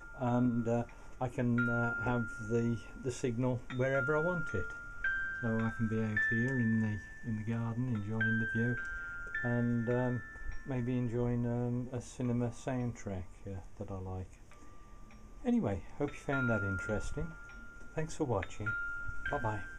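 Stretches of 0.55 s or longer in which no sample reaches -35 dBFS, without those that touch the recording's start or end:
14.22–15.46
17.28–17.97

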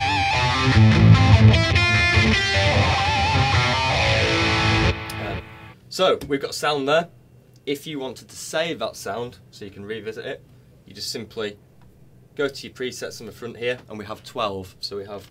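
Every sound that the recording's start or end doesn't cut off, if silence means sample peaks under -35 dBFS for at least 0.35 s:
7.67–10.36
10.88–11.54

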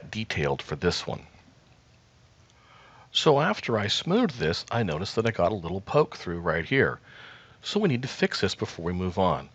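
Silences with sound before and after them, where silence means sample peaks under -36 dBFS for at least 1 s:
1.19–3.15

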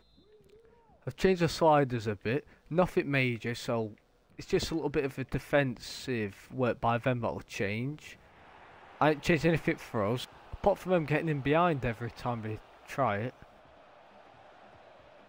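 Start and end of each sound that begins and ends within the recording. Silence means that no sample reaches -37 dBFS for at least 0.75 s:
1.07–8.07
9.01–13.42

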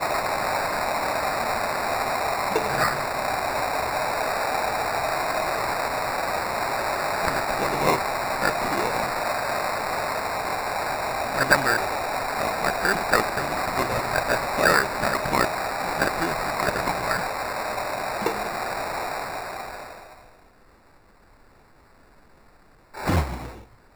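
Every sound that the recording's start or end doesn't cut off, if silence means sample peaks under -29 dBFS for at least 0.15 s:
22.97–23.49

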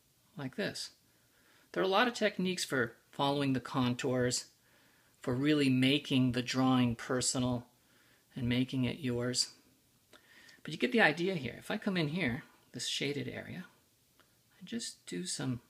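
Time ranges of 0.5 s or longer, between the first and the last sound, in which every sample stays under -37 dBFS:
0.86–1.74
4.41–5.24
7.59–8.37
9.46–10.65
13.61–14.73

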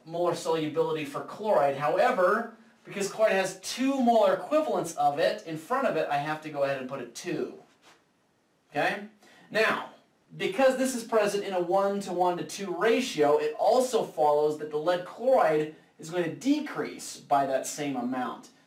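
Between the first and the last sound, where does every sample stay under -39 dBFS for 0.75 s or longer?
7.55–8.75

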